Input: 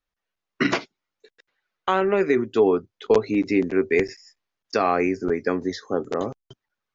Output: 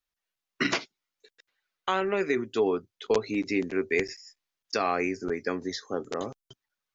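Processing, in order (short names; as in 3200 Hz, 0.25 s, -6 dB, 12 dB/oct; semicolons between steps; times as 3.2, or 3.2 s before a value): high shelf 2200 Hz +10 dB; gain -7.5 dB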